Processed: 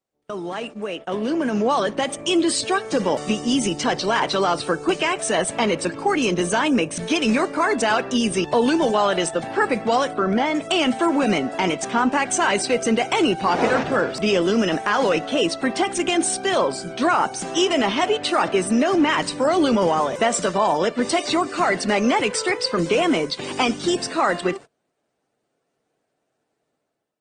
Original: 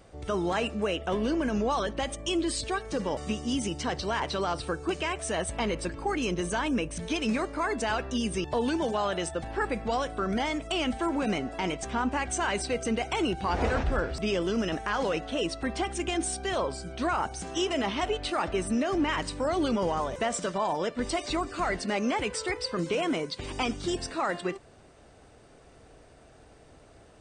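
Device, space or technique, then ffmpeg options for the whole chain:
video call: -filter_complex "[0:a]asettb=1/sr,asplit=3[link_01][link_02][link_03];[link_01]atrim=end=10.134[link_04];[link_02]atrim=start=10.13:end=10.55,asetpts=PTS-STARTPTS,afade=type=in:duration=0.004:curve=qsin,afade=type=out:start_time=0.416:duration=0.004:curve=qsin,aemphasis=mode=reproduction:type=75kf[link_05];[link_03]atrim=start=10.546[link_06];[link_04][link_05]acrossfade=duration=0.004:curve1=hsin:curve2=qsin[link_07];[link_07][link_06]acrossfade=duration=0.004:curve1=qsin:curve2=hsin,highpass=frequency=110:width=0.5412,highpass=frequency=110:width=1.3066,highpass=150,dynaudnorm=framelen=890:gausssize=3:maxgain=11.5dB,agate=range=-28dB:threshold=-33dB:ratio=16:detection=peak,volume=-1.5dB" -ar 48000 -c:a libopus -b:a 20k

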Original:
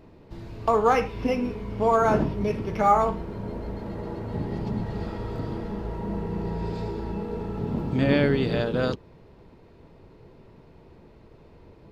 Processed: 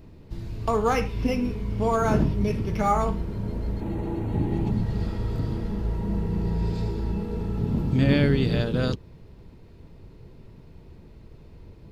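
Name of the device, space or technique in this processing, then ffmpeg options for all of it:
smiley-face EQ: -filter_complex "[0:a]lowshelf=frequency=170:gain=8.5,equalizer=frequency=760:width_type=o:width=2.3:gain=-5,highshelf=frequency=5200:gain=7,asettb=1/sr,asplit=3[link_01][link_02][link_03];[link_01]atrim=end=3.804[link_04];[link_02]atrim=start=3.8:end=4.71,asetpts=PTS-STARTPTS,afade=type=in:duration=0.004:curve=qsin,afade=type=out:start_time=0.906:duration=0.004:curve=qsin,equalizer=frequency=315:width_type=o:width=0.33:gain=11,equalizer=frequency=800:width_type=o:width=0.33:gain=8,equalizer=frequency=2500:width_type=o:width=0.33:gain=5,equalizer=frequency=5000:width_type=o:width=0.33:gain=-12[link_05];[link_03]atrim=start=4.706[link_06];[link_04][link_05]acrossfade=duration=0.004:curve1=hsin:curve2=qsin[link_07];[link_07][link_06]acrossfade=duration=0.004:curve1=qsin:curve2=hsin"

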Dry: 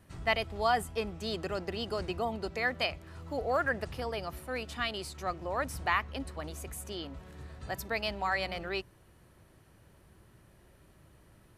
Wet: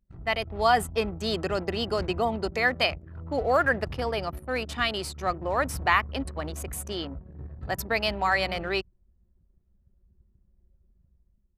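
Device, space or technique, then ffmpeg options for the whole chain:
voice memo with heavy noise removal: -af "anlmdn=0.0398,dynaudnorm=framelen=110:gausssize=9:maxgain=7dB"

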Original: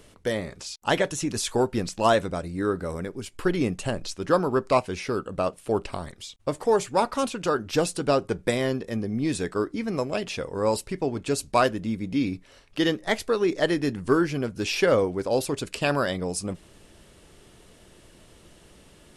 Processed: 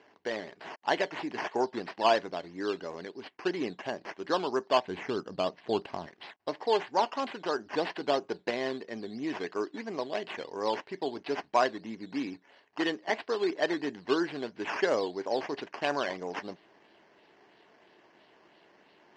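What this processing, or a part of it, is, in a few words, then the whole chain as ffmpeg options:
circuit-bent sampling toy: -filter_complex "[0:a]acrusher=samples=9:mix=1:aa=0.000001:lfo=1:lforange=5.4:lforate=3,highpass=440,equalizer=frequency=520:width_type=q:width=4:gain=-8,equalizer=frequency=1300:width_type=q:width=4:gain=-10,equalizer=frequency=2400:width_type=q:width=4:gain=-6,equalizer=frequency=3600:width_type=q:width=4:gain=-8,lowpass=frequency=4300:width=0.5412,lowpass=frequency=4300:width=1.3066,asettb=1/sr,asplit=3[link_01][link_02][link_03];[link_01]atrim=end=4.854[link_04];[link_02]atrim=start=4.85:end=6.07,asetpts=PTS-STARTPTS,afade=type=in:duration=0.004:curve=qsin,afade=type=out:start_time=1.216:duration=0.004:curve=qsin,bass=frequency=250:gain=11,treble=frequency=4000:gain=0[link_05];[link_03]atrim=start=6.066[link_06];[link_04][link_05]acrossfade=duration=0.004:curve1=hsin:curve2=qsin[link_07];[link_07][link_06]acrossfade=duration=0.004:curve1=qsin:curve2=hsin"

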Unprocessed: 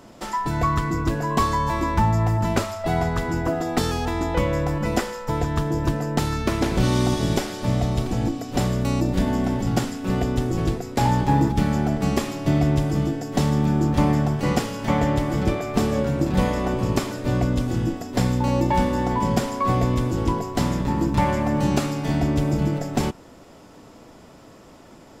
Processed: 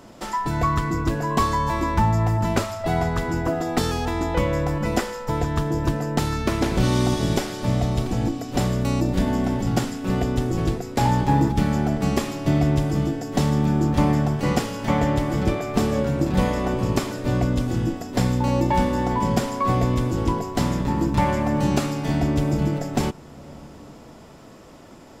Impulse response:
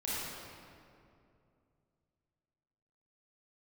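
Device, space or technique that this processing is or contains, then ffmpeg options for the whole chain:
ducked reverb: -filter_complex "[0:a]asplit=3[link_01][link_02][link_03];[1:a]atrim=start_sample=2205[link_04];[link_02][link_04]afir=irnorm=-1:irlink=0[link_05];[link_03]apad=whole_len=1111332[link_06];[link_05][link_06]sidechaincompress=threshold=-40dB:ratio=8:attack=16:release=326,volume=-15dB[link_07];[link_01][link_07]amix=inputs=2:normalize=0"

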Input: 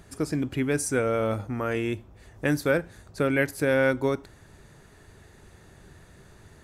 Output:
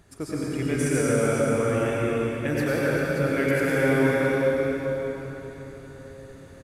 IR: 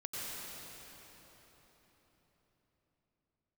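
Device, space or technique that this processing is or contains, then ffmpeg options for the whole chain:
cave: -filter_complex "[0:a]aecho=1:1:389:0.335[link_01];[1:a]atrim=start_sample=2205[link_02];[link_01][link_02]afir=irnorm=-1:irlink=0"

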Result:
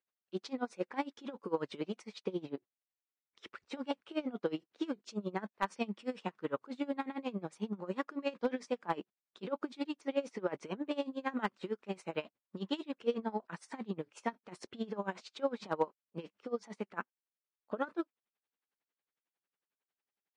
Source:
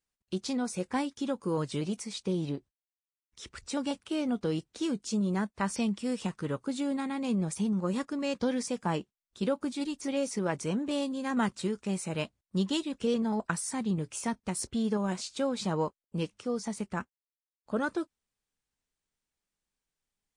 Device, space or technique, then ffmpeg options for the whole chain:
helicopter radio: -af "highpass=330,lowpass=2800,aeval=exprs='val(0)*pow(10,-22*(0.5-0.5*cos(2*PI*11*n/s))/20)':channel_layout=same,asoftclip=type=hard:threshold=-23dB,volume=3dB"

